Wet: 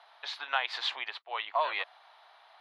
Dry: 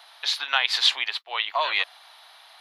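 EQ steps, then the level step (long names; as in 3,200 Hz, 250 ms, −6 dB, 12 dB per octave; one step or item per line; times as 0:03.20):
resonant band-pass 420 Hz, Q 0.52
low-shelf EQ 360 Hz −7 dB
0.0 dB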